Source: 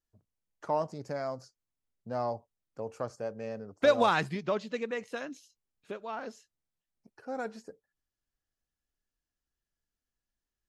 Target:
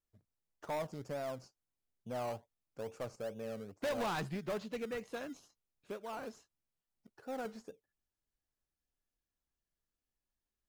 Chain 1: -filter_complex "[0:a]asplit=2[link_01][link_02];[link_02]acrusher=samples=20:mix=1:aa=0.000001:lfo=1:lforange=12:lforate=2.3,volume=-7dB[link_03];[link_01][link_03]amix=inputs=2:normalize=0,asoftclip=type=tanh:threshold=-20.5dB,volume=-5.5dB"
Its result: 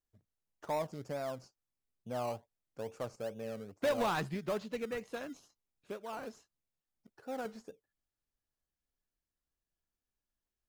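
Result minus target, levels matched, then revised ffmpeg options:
soft clipping: distortion −5 dB
-filter_complex "[0:a]asplit=2[link_01][link_02];[link_02]acrusher=samples=20:mix=1:aa=0.000001:lfo=1:lforange=12:lforate=2.3,volume=-7dB[link_03];[link_01][link_03]amix=inputs=2:normalize=0,asoftclip=type=tanh:threshold=-27dB,volume=-5.5dB"

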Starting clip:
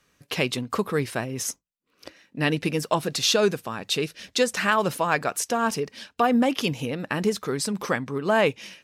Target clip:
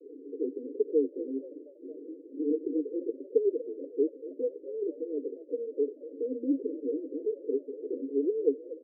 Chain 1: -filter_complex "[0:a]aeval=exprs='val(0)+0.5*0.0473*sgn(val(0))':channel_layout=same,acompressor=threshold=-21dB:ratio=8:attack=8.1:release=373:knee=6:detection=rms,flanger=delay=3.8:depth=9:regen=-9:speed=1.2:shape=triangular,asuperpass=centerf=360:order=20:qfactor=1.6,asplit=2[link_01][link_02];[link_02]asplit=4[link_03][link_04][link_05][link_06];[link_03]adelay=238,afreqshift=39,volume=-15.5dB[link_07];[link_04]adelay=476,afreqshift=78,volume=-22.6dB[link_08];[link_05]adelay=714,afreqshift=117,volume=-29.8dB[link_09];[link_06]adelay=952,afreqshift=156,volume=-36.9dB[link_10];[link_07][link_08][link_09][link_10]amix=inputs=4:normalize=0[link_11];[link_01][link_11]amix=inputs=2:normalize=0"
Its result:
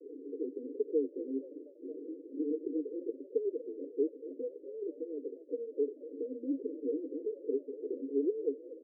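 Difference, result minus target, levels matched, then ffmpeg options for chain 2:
downward compressor: peak gain reduction +8.5 dB
-filter_complex "[0:a]aeval=exprs='val(0)+0.5*0.0473*sgn(val(0))':channel_layout=same,flanger=delay=3.8:depth=9:regen=-9:speed=1.2:shape=triangular,asuperpass=centerf=360:order=20:qfactor=1.6,asplit=2[link_01][link_02];[link_02]asplit=4[link_03][link_04][link_05][link_06];[link_03]adelay=238,afreqshift=39,volume=-15.5dB[link_07];[link_04]adelay=476,afreqshift=78,volume=-22.6dB[link_08];[link_05]adelay=714,afreqshift=117,volume=-29.8dB[link_09];[link_06]adelay=952,afreqshift=156,volume=-36.9dB[link_10];[link_07][link_08][link_09][link_10]amix=inputs=4:normalize=0[link_11];[link_01][link_11]amix=inputs=2:normalize=0"

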